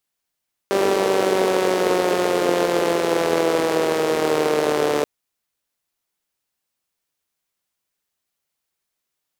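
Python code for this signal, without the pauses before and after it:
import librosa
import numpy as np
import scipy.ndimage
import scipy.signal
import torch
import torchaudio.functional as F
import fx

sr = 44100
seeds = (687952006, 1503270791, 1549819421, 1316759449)

y = fx.engine_four_rev(sr, seeds[0], length_s=4.33, rpm=5900, resonances_hz=(440.0,), end_rpm=4400)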